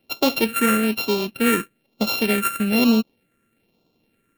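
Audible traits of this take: a buzz of ramps at a fixed pitch in blocks of 32 samples; phasing stages 4, 1.1 Hz, lowest notch 800–1700 Hz

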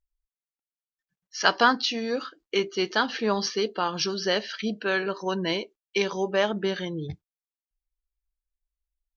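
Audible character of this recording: noise floor -96 dBFS; spectral tilt -3.5 dB/octave

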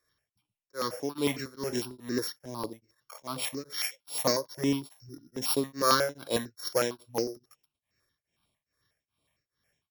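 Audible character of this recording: a buzz of ramps at a fixed pitch in blocks of 8 samples; tremolo triangle 2.4 Hz, depth 100%; notches that jump at a steady rate 11 Hz 780–6000 Hz

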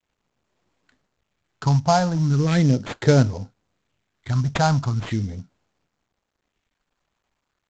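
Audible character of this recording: a quantiser's noise floor 12-bit, dither none; phasing stages 4, 0.38 Hz, lowest notch 370–4100 Hz; aliases and images of a low sample rate 5.7 kHz, jitter 20%; µ-law

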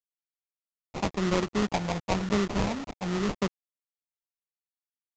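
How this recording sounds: a quantiser's noise floor 6-bit, dither none; phasing stages 8, 0.94 Hz, lowest notch 380–1000 Hz; aliases and images of a low sample rate 1.6 kHz, jitter 20%; µ-law

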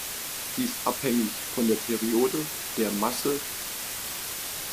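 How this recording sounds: a quantiser's noise floor 6-bit, dither triangular; MP3

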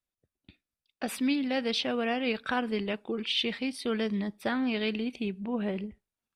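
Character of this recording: noise floor -92 dBFS; spectral tilt -2.5 dB/octave

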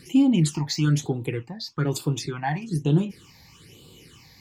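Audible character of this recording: phasing stages 8, 1.1 Hz, lowest notch 380–1900 Hz

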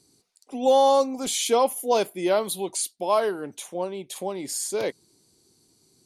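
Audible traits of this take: noise floor -66 dBFS; spectral tilt -2.5 dB/octave

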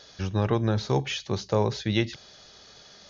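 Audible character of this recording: noise floor -52 dBFS; spectral tilt -5.5 dB/octave

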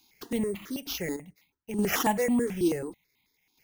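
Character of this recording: chopped level 0.56 Hz, depth 60%, duty 65%; aliases and images of a low sample rate 8.8 kHz, jitter 0%; notches that jump at a steady rate 9.2 Hz 530–1600 Hz

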